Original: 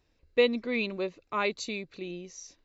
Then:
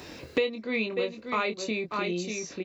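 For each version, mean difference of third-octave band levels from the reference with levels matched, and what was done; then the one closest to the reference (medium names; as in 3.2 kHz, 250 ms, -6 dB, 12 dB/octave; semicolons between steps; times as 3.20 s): 6.5 dB: high-pass 56 Hz; doubling 23 ms -6 dB; delay 590 ms -10.5 dB; three bands compressed up and down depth 100%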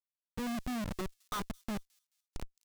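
15.5 dB: low-pass that closes with the level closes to 320 Hz, closed at -24.5 dBFS; FFT filter 160 Hz 0 dB, 270 Hz -5 dB, 490 Hz -17 dB, 750 Hz -3 dB, 1.4 kHz +10 dB, 2.1 kHz -28 dB, 3.3 kHz +6 dB, 5.2 kHz -16 dB, 7.4 kHz +13 dB; Schmitt trigger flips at -38 dBFS; on a send: feedback echo behind a high-pass 216 ms, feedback 36%, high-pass 5.2 kHz, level -18 dB; on the sum: trim +4.5 dB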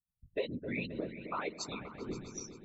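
11.5 dB: expander on every frequency bin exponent 3; compression 6:1, threshold -41 dBFS, peak gain reduction 19.5 dB; whisper effect; delay with an opening low-pass 132 ms, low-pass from 200 Hz, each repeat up 2 oct, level -6 dB; trim +5.5 dB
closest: first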